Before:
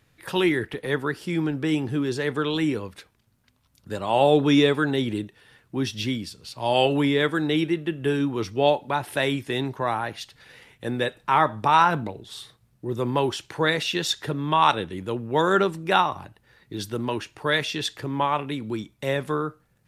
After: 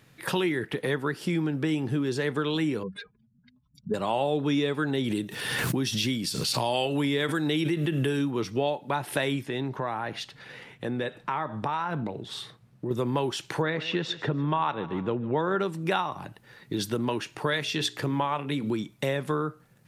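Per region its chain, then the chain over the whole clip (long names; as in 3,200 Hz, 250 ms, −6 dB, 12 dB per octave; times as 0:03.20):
0:02.83–0:03.94: expanding power law on the bin magnitudes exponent 2.6 + comb filter 4.8 ms, depth 68%
0:05.04–0:08.31: high-shelf EQ 4,100 Hz +8 dB + background raised ahead of every attack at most 44 dB per second
0:09.46–0:12.91: low-pass filter 3,300 Hz 6 dB per octave + downward compressor 2 to 1, threshold −37 dBFS
0:13.62–0:15.60: Bessel low-pass filter 2,100 Hz + repeating echo 147 ms, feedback 43%, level −19.5 dB
0:17.50–0:18.70: mains-hum notches 60/120/180/240/300/360/420 Hz + one half of a high-frequency compander encoder only
whole clip: low shelf with overshoot 100 Hz −9 dB, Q 1.5; downward compressor 4 to 1, threshold −31 dBFS; level +5.5 dB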